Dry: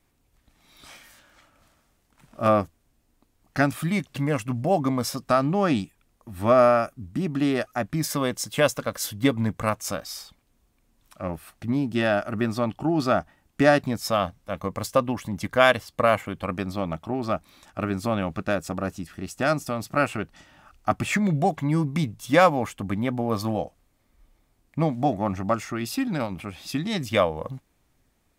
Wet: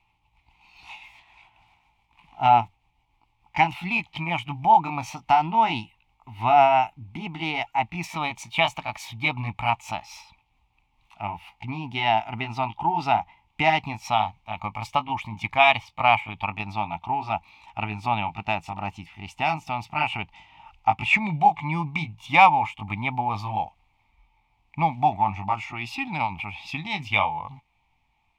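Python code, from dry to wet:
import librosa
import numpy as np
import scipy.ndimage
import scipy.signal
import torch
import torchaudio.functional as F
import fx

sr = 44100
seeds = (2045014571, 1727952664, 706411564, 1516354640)

y = fx.pitch_glide(x, sr, semitones=2.5, runs='ending unshifted')
y = fx.curve_eq(y, sr, hz=(110.0, 550.0, 870.0, 1600.0, 2300.0, 4400.0, 11000.0), db=(0, -16, 15, -15, 13, -4, -18))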